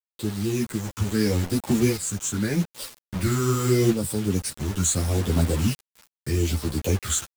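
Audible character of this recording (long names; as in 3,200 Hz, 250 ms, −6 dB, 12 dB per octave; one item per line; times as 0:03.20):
phaser sweep stages 8, 0.79 Hz, lowest notch 620–2,100 Hz
a quantiser's noise floor 6 bits, dither none
tremolo saw up 0.51 Hz, depth 60%
a shimmering, thickened sound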